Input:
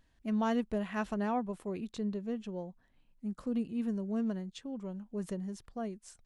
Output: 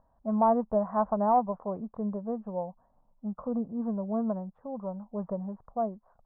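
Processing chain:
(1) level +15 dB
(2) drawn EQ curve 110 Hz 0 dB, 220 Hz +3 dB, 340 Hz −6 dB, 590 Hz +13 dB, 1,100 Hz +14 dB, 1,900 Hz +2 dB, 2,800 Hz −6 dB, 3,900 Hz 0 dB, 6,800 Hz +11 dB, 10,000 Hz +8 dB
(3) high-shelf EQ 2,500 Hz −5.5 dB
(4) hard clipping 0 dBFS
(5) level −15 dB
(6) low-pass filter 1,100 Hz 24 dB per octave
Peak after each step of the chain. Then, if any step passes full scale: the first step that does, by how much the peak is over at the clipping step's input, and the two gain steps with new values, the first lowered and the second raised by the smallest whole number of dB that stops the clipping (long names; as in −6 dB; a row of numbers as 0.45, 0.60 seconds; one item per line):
−6.0, +5.0, +4.5, 0.0, −15.0, −14.0 dBFS
step 2, 4.5 dB
step 1 +10 dB, step 5 −10 dB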